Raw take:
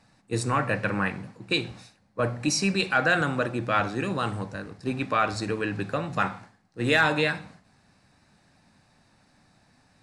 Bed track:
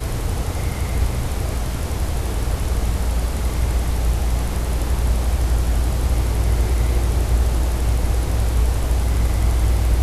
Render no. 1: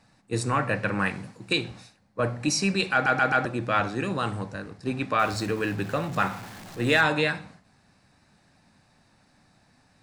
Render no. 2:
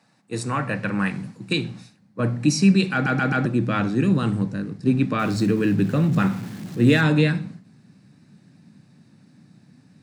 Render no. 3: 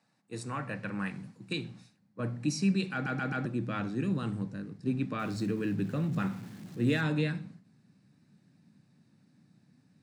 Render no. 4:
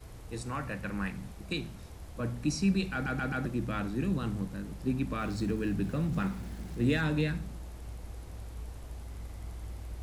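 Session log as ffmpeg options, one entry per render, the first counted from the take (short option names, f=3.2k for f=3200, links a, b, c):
-filter_complex "[0:a]asettb=1/sr,asplit=3[a][b][c];[a]atrim=end=0.994[d];[b]atrim=start=0.99:end=1.53,asetpts=PTS-STARTPTS,afade=t=in:d=0.004:c=qsin,afade=t=out:st=0.536:d=0.004:c=qsin,highshelf=f=4.1k:g=9[e];[c]atrim=start=1.526[f];[d][e]acrossfade=d=0.004:c1=hsin:c2=qsin[g];[g][f]acrossfade=d=0.004:c1=qsin:c2=hsin,asettb=1/sr,asplit=3[h][i][j];[h]atrim=end=5.194[k];[i]atrim=start=5.19:end=7.01,asetpts=PTS-STARTPTS,afade=t=in:d=0.004:c=qsin,afade=t=out:st=1.816:d=0.004:c=qsin,aeval=exprs='val(0)+0.5*0.0133*sgn(val(0))':c=same[l];[j]atrim=start=7.006[m];[k][l]acrossfade=d=0.004:c1=hsin:c2=qsin[n];[n][m]acrossfade=d=0.004:c1=qsin:c2=hsin,asplit=5[o][p][q][r][s];[o]atrim=end=3.062[t];[p]atrim=start=2.928:end=3.062[u];[q]atrim=start=2.928:end=3.062[v];[r]atrim=start=2.928:end=3.062[w];[s]atrim=start=3.448[x];[t][u]acrossfade=d=0.004:c1=hsin:c2=hsin[y];[y][v]acrossfade=d=0.004:c1=hsin:c2=hsin[z];[z][w]acrossfade=d=0.004:c1=hsin:c2=hsin[aa];[aa][x]acrossfade=d=0.004:c1=hsin:c2=hsin"
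-af "highpass=f=140:w=0.5412,highpass=f=140:w=1.3066,asubboost=boost=9:cutoff=250"
-af "volume=-11.5dB"
-filter_complex "[1:a]volume=-24dB[a];[0:a][a]amix=inputs=2:normalize=0"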